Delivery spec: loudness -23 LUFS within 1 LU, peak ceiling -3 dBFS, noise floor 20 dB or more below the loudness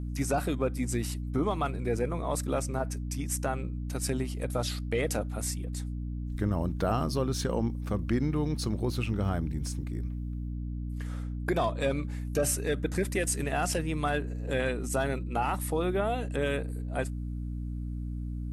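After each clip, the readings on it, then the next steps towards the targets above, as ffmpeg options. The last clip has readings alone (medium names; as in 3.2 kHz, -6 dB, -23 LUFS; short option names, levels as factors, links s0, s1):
hum 60 Hz; highest harmonic 300 Hz; hum level -32 dBFS; loudness -31.5 LUFS; peak level -15.5 dBFS; loudness target -23.0 LUFS
-> -af "bandreject=f=60:t=h:w=4,bandreject=f=120:t=h:w=4,bandreject=f=180:t=h:w=4,bandreject=f=240:t=h:w=4,bandreject=f=300:t=h:w=4"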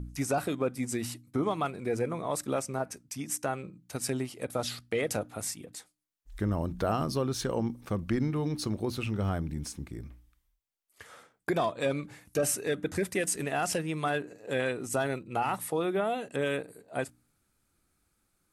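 hum not found; loudness -32.0 LUFS; peak level -17.0 dBFS; loudness target -23.0 LUFS
-> -af "volume=2.82"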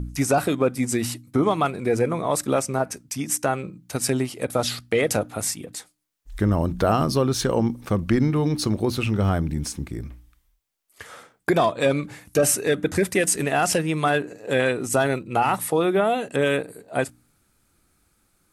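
loudness -23.0 LUFS; peak level -8.0 dBFS; noise floor -67 dBFS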